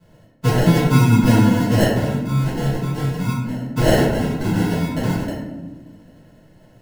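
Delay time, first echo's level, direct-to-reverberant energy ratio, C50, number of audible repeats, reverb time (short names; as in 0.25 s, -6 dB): none, none, -11.0 dB, 1.0 dB, none, 1.2 s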